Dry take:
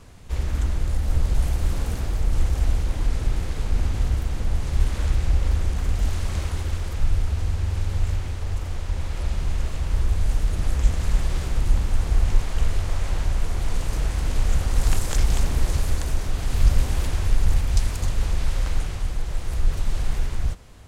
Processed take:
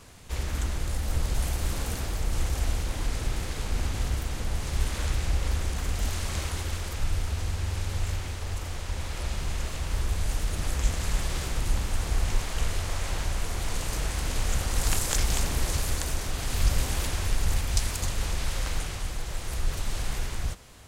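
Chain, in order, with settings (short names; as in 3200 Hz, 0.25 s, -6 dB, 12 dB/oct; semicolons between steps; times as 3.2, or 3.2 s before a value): tilt +1.5 dB/oct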